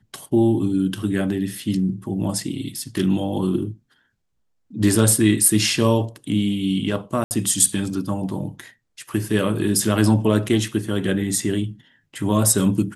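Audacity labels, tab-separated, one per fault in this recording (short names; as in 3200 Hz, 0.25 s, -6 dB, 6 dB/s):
7.240000	7.310000	gap 69 ms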